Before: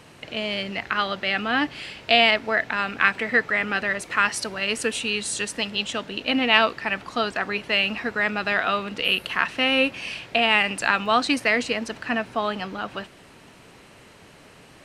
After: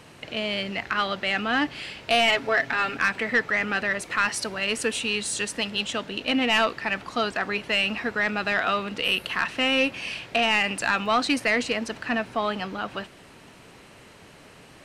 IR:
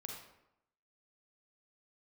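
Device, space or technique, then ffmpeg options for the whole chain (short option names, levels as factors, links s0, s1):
saturation between pre-emphasis and de-emphasis: -filter_complex "[0:a]asettb=1/sr,asplit=3[s0][s1][s2];[s0]atrim=end=2.274[s3];[s1]atrim=start=2.27:end=2.97,asetpts=PTS-STARTPTS,afade=t=in:d=0.004:c=qsin,afade=t=out:st=0.696:d=0.004:c=qsin,aecho=1:1:7.3:0.74,atrim=end_sample=30870[s4];[s2]atrim=start=2.966[s5];[s3][s4]acrossfade=d=0.004:c1=hsin:c2=qsin[s6];[s6][s5]acrossfade=d=0.004:c1=qsin:c2=hsin,highshelf=f=7100:g=10,asoftclip=type=tanh:threshold=0.224,highshelf=f=7100:g=-10"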